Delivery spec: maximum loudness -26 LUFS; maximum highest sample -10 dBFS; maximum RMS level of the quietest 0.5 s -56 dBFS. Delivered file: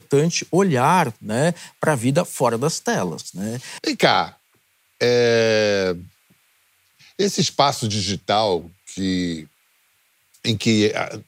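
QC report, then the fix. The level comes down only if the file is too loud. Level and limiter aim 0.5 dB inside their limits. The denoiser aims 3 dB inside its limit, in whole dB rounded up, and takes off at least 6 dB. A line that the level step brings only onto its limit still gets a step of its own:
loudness -20.0 LUFS: fail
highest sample -2.0 dBFS: fail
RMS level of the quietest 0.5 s -63 dBFS: pass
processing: trim -6.5 dB; peak limiter -10.5 dBFS

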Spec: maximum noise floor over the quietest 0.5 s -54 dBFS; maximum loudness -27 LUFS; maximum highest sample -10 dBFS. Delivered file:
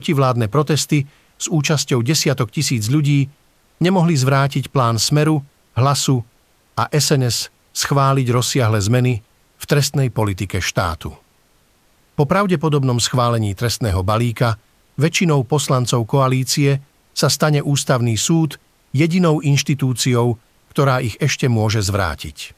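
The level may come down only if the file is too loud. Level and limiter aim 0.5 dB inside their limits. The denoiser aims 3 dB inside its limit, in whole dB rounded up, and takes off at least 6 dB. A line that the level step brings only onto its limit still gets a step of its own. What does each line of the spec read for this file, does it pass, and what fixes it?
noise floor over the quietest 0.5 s -57 dBFS: pass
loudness -17.5 LUFS: fail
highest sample -4.5 dBFS: fail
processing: trim -10 dB

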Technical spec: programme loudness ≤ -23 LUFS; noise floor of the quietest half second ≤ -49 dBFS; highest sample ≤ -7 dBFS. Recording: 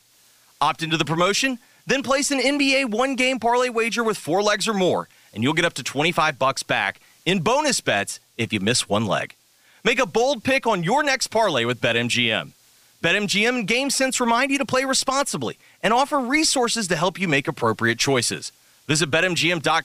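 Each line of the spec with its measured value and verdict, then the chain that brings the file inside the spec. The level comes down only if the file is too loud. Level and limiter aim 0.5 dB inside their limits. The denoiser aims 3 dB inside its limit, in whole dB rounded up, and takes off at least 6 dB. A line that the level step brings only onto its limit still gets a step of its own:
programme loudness -20.5 LUFS: fail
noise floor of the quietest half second -57 dBFS: pass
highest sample -3.5 dBFS: fail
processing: trim -3 dB; peak limiter -7.5 dBFS

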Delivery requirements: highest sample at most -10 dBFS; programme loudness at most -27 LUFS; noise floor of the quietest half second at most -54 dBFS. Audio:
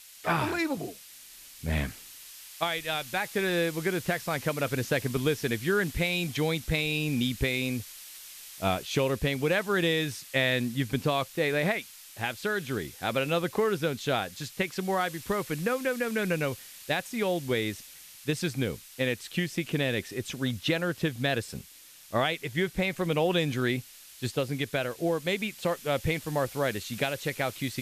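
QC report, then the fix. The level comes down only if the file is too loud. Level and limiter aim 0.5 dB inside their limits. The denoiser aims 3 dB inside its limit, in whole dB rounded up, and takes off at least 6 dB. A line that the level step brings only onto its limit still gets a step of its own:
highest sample -14.0 dBFS: pass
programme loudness -29.5 LUFS: pass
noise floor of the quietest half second -52 dBFS: fail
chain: noise reduction 6 dB, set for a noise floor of -52 dBFS

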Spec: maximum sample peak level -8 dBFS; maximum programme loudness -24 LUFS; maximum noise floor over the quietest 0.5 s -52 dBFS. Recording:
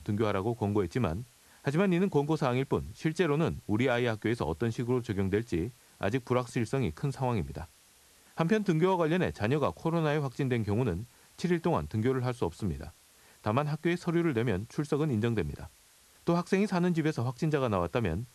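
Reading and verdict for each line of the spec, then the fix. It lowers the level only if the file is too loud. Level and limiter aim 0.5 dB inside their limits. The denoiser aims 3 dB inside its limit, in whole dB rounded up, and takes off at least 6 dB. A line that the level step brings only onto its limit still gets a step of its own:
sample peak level -13.0 dBFS: pass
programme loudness -30.5 LUFS: pass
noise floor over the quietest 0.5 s -61 dBFS: pass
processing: none needed

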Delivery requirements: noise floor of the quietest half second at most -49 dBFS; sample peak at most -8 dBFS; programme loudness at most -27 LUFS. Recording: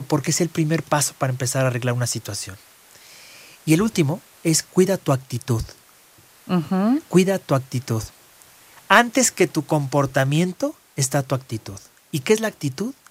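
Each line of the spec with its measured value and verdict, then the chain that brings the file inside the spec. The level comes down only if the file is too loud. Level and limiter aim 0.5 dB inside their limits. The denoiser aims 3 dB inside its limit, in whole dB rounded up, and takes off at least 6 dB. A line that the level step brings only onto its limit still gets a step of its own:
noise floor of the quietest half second -52 dBFS: pass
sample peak -1.5 dBFS: fail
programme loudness -21.0 LUFS: fail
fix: trim -6.5 dB; peak limiter -8.5 dBFS

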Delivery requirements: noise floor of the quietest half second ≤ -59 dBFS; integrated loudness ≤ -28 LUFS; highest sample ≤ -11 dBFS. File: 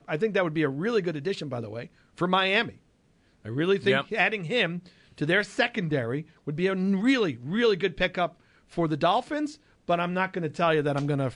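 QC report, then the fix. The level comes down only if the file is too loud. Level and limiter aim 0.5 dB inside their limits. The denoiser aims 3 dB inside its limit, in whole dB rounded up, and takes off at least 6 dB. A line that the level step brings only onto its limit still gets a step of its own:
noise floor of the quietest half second -64 dBFS: pass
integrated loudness -26.5 LUFS: fail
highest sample -9.0 dBFS: fail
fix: trim -2 dB; peak limiter -11.5 dBFS

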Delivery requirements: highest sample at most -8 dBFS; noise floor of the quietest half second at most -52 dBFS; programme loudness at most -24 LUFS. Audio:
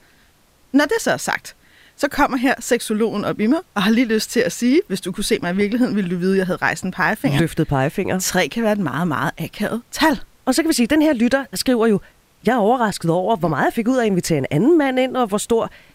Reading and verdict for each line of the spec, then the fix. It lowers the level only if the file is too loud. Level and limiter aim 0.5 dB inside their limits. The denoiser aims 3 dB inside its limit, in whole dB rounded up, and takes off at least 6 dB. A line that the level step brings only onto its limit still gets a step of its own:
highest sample -3.5 dBFS: fail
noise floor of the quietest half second -55 dBFS: pass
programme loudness -19.0 LUFS: fail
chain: trim -5.5 dB

